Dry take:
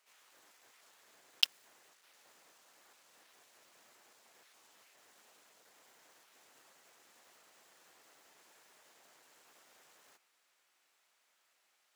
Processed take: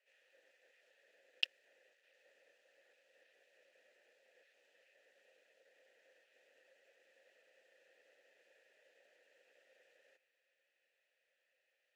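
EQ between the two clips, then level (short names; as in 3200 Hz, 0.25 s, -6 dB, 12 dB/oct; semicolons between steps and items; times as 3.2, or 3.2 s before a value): vowel filter e; high shelf 4800 Hz +4 dB; +6.5 dB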